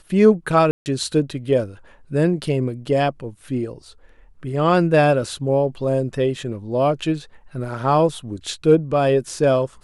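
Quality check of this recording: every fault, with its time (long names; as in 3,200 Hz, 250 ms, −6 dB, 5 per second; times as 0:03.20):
0:00.71–0:00.86: drop-out 149 ms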